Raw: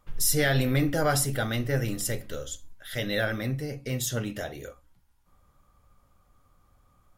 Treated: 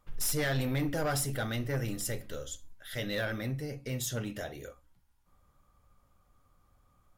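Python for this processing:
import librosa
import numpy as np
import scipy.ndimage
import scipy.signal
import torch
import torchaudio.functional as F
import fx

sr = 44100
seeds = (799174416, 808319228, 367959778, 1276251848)

y = 10.0 ** (-20.5 / 20.0) * np.tanh(x / 10.0 ** (-20.5 / 20.0))
y = y * librosa.db_to_amplitude(-4.0)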